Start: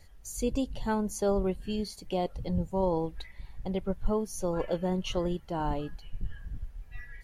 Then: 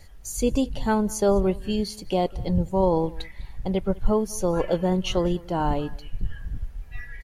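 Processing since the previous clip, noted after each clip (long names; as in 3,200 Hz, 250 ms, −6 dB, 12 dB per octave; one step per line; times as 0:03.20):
single-tap delay 201 ms −23 dB
level +7 dB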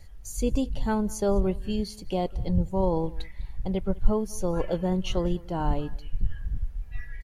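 low-shelf EQ 140 Hz +8 dB
level −5.5 dB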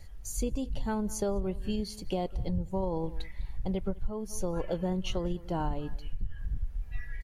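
downward compressor 6 to 1, threshold −27 dBFS, peak gain reduction 15.5 dB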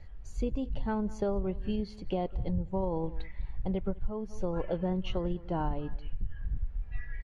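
low-pass filter 2,700 Hz 12 dB per octave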